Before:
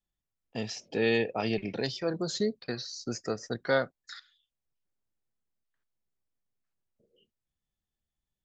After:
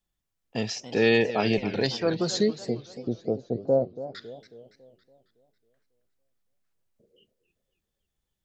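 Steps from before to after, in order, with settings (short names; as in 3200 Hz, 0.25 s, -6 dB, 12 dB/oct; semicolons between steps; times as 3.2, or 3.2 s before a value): 2.59–4.15 steep low-pass 710 Hz 36 dB/oct; warbling echo 0.277 s, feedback 49%, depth 191 cents, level -14 dB; gain +5.5 dB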